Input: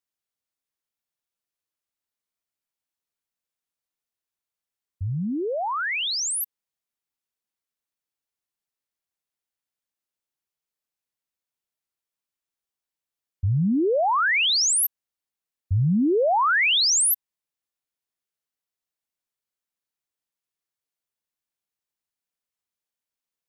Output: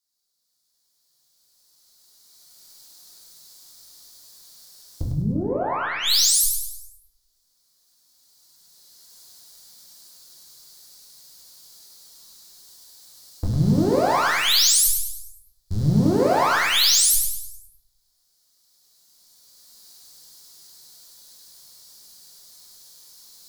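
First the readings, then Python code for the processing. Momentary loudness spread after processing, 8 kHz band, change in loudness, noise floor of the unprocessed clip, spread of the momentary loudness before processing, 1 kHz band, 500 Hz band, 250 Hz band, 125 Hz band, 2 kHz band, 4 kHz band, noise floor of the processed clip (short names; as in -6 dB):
17 LU, +4.0 dB, +2.0 dB, under -85 dBFS, 11 LU, +1.0 dB, +1.5 dB, +2.0 dB, +2.5 dB, -1.5 dB, +3.5 dB, -69 dBFS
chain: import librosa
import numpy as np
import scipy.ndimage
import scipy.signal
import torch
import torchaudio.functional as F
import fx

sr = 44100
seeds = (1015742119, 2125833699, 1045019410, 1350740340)

p1 = fx.recorder_agc(x, sr, target_db=-24.0, rise_db_per_s=11.0, max_gain_db=30)
p2 = fx.schmitt(p1, sr, flips_db=-21.5)
p3 = p1 + F.gain(torch.from_numpy(p2), -11.0).numpy()
p4 = fx.high_shelf_res(p3, sr, hz=3400.0, db=9.5, q=3.0)
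p5 = fx.tube_stage(p4, sr, drive_db=20.0, bias=0.6)
p6 = p5 + fx.echo_feedback(p5, sr, ms=102, feedback_pct=45, wet_db=-4.5, dry=0)
y = fx.room_shoebox(p6, sr, seeds[0], volume_m3=120.0, walls='mixed', distance_m=0.88)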